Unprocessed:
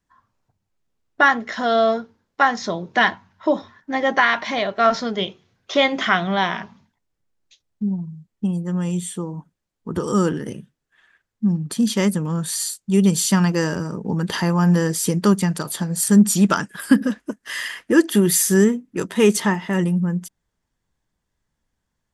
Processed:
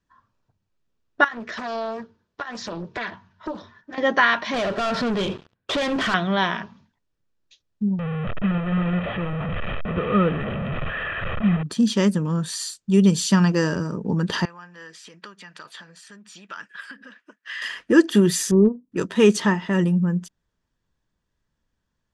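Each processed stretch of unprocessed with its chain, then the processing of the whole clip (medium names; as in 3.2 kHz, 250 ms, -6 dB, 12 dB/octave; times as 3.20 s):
1.24–3.98 s: compression 4:1, threshold -25 dBFS + comb of notches 270 Hz + loudspeaker Doppler distortion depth 0.61 ms
4.54–6.14 s: distance through air 260 m + compression 2.5:1, threshold -34 dBFS + waveshaping leveller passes 5
7.99–11.63 s: one-bit delta coder 16 kbps, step -21 dBFS + distance through air 160 m + comb 1.6 ms, depth 55%
14.45–17.62 s: compression, threshold -25 dBFS + band-pass filter 2.1 kHz, Q 1.2
18.51–18.92 s: brick-wall FIR low-pass 1.2 kHz + transient shaper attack -4 dB, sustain -12 dB
whole clip: low-pass 5.9 kHz 12 dB/octave; peaking EQ 780 Hz -5.5 dB 0.27 oct; band-stop 2.1 kHz, Q 12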